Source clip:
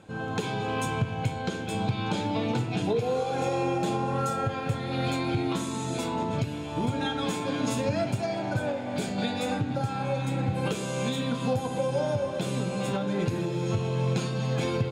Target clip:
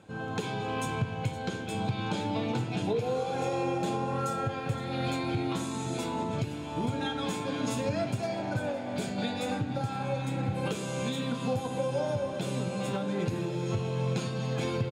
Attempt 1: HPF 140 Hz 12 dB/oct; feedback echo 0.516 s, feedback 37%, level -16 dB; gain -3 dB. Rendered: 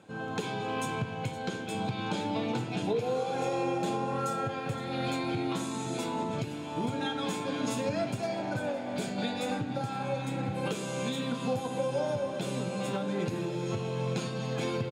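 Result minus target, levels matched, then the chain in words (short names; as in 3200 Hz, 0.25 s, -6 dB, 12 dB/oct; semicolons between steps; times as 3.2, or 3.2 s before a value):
125 Hz band -3.0 dB
HPF 48 Hz 12 dB/oct; feedback echo 0.516 s, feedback 37%, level -16 dB; gain -3 dB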